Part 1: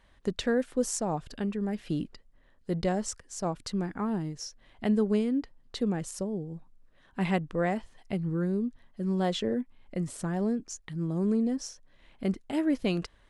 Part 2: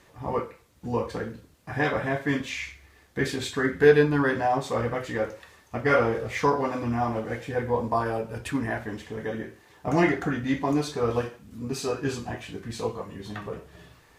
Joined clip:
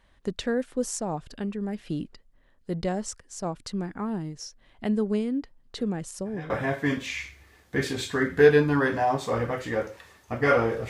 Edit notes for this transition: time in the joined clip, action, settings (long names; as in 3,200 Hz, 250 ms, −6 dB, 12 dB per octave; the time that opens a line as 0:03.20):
part 1
0:05.78: mix in part 2 from 0:01.21 0.72 s −17.5 dB
0:06.50: continue with part 2 from 0:01.93